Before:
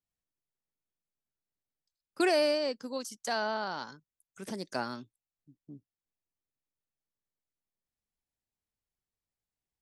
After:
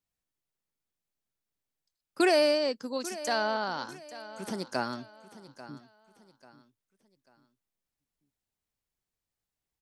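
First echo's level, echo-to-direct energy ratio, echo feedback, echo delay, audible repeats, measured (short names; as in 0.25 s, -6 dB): -16.0 dB, -15.5 dB, 34%, 0.841 s, 3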